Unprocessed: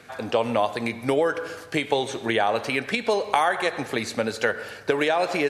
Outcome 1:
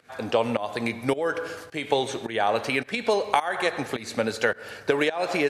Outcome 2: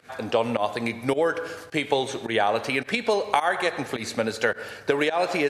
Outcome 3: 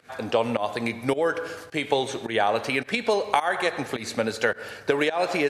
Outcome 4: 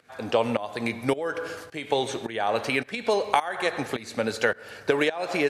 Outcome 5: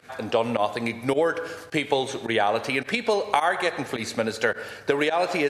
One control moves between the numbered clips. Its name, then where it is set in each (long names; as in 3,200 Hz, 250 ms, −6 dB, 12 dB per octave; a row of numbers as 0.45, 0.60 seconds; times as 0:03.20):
fake sidechain pumping, release: 268, 109, 160, 429, 66 milliseconds